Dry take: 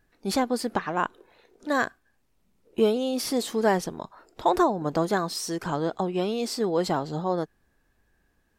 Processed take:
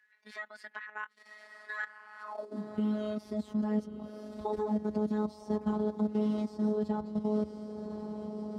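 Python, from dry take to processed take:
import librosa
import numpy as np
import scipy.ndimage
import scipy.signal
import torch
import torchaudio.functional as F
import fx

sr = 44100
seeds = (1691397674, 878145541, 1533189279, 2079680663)

y = fx.echo_diffused(x, sr, ms=1083, feedback_pct=57, wet_db=-10.0)
y = fx.level_steps(y, sr, step_db=14)
y = fx.pitch_keep_formants(y, sr, semitones=3.5)
y = fx.robotise(y, sr, hz=212.0)
y = fx.riaa(y, sr, side='playback')
y = fx.filter_sweep_highpass(y, sr, from_hz=1800.0, to_hz=81.0, start_s=2.19, end_s=2.77, q=5.8)
y = fx.peak_eq(y, sr, hz=1700.0, db=-4.5, octaves=1.6)
y = fx.band_squash(y, sr, depth_pct=40)
y = y * 10.0 ** (-5.0 / 20.0)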